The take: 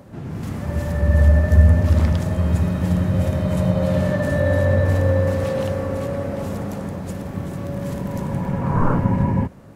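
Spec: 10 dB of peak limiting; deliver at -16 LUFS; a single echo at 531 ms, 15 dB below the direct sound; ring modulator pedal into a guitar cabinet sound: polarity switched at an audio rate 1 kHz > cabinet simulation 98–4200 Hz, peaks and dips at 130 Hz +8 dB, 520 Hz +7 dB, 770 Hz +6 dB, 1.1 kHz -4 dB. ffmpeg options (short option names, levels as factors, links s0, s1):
-af "alimiter=limit=0.251:level=0:latency=1,aecho=1:1:531:0.178,aeval=exprs='val(0)*sgn(sin(2*PI*1000*n/s))':c=same,highpass=98,equalizer=f=130:t=q:w=4:g=8,equalizer=f=520:t=q:w=4:g=7,equalizer=f=770:t=q:w=4:g=6,equalizer=f=1100:t=q:w=4:g=-4,lowpass=f=4200:w=0.5412,lowpass=f=4200:w=1.3066,volume=1.58"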